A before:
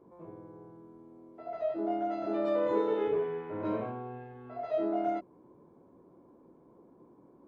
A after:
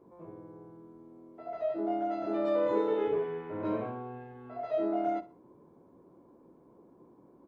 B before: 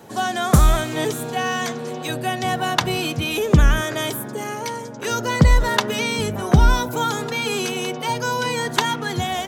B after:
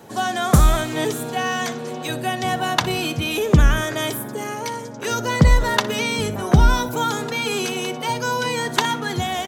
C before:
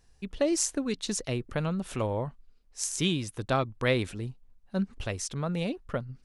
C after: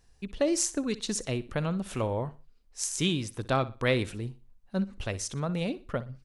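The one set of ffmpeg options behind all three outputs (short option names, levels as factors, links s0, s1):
-af "aecho=1:1:61|122|183:0.141|0.0424|0.0127"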